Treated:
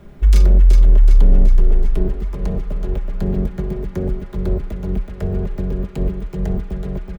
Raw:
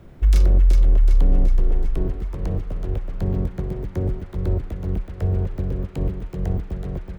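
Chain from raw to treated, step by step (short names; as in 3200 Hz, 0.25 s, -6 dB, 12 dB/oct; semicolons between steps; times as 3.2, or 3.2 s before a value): comb 4.9 ms, depth 59%; gain +2.5 dB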